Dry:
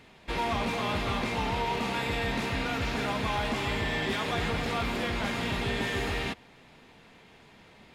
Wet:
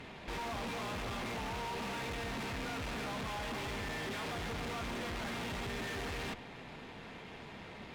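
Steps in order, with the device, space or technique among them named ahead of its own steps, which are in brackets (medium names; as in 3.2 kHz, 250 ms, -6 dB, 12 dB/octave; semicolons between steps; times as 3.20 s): tube preamp driven hard (valve stage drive 47 dB, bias 0.5; treble shelf 5.1 kHz -9 dB); trim +9 dB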